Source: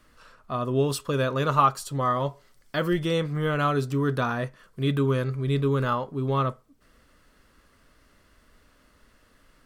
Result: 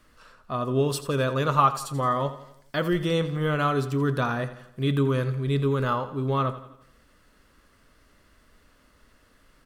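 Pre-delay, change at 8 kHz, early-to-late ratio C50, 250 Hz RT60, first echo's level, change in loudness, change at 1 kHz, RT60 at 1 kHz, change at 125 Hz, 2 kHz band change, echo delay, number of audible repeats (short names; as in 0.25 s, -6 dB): none, 0.0 dB, none, none, -14.0 dB, 0.0 dB, 0.0 dB, none, +0.5 dB, 0.0 dB, 85 ms, 4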